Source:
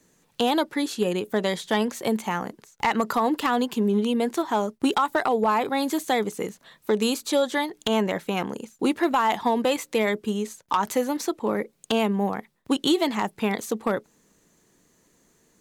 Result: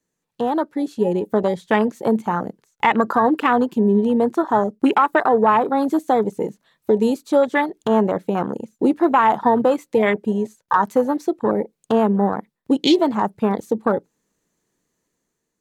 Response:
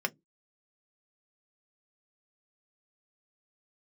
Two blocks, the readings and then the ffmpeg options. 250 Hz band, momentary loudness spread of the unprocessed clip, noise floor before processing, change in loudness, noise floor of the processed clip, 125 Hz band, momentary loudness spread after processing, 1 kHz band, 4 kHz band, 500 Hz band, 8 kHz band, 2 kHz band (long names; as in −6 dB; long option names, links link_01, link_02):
+6.0 dB, 7 LU, −66 dBFS, +5.5 dB, −78 dBFS, +6.0 dB, 8 LU, +6.5 dB, −2.0 dB, +6.5 dB, can't be measured, +4.0 dB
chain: -filter_complex "[0:a]afwtdn=0.0447,dynaudnorm=framelen=320:gausssize=5:maxgain=6dB,asplit=2[link_01][link_02];[1:a]atrim=start_sample=2205,atrim=end_sample=3528,asetrate=36162,aresample=44100[link_03];[link_02][link_03]afir=irnorm=-1:irlink=0,volume=-24.5dB[link_04];[link_01][link_04]amix=inputs=2:normalize=0"